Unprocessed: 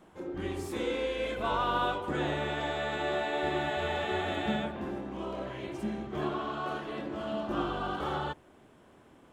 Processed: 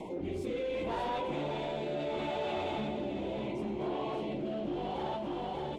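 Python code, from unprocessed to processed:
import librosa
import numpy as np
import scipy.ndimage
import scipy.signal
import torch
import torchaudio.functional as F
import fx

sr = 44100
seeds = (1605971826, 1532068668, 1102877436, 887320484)

y = scipy.signal.sosfilt(scipy.signal.ellip(3, 1.0, 50, [1000.0, 2100.0], 'bandstop', fs=sr, output='sos'), x)
y = fx.clip_asym(y, sr, top_db=-34.0, bottom_db=-23.0)
y = fx.lowpass(y, sr, hz=2700.0, slope=6)
y = fx.peak_eq(y, sr, hz=80.0, db=-4.5, octaves=0.25)
y = fx.stretch_vocoder_free(y, sr, factor=0.62)
y = fx.low_shelf(y, sr, hz=140.0, db=-6.5)
y = y + 10.0 ** (-6.5 / 20.0) * np.pad(y, (int(592 * sr / 1000.0), 0))[:len(y)]
y = fx.rotary(y, sr, hz=0.7)
y = fx.env_flatten(y, sr, amount_pct=70)
y = y * 10.0 ** (2.0 / 20.0)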